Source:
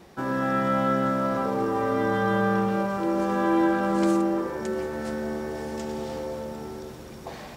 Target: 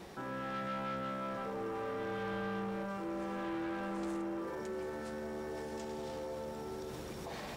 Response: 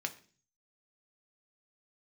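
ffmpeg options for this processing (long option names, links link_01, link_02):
-filter_complex "[0:a]asoftclip=type=tanh:threshold=-24dB,alimiter=level_in=11.5dB:limit=-24dB:level=0:latency=1:release=70,volume=-11.5dB,asplit=2[link_01][link_02];[1:a]atrim=start_sample=2205,asetrate=70560,aresample=44100[link_03];[link_02][link_03]afir=irnorm=-1:irlink=0,volume=-5dB[link_04];[link_01][link_04]amix=inputs=2:normalize=0,volume=-1.5dB"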